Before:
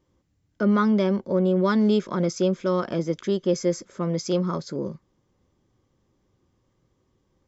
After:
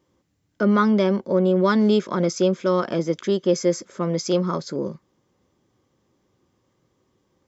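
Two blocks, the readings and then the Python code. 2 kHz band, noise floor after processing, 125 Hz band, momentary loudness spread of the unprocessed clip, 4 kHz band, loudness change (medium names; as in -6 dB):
+4.0 dB, -70 dBFS, +1.0 dB, 9 LU, +4.0 dB, +2.5 dB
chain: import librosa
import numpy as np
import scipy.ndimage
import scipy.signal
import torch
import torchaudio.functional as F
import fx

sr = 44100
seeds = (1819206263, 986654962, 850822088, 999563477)

y = fx.highpass(x, sr, hz=180.0, slope=6)
y = F.gain(torch.from_numpy(y), 4.0).numpy()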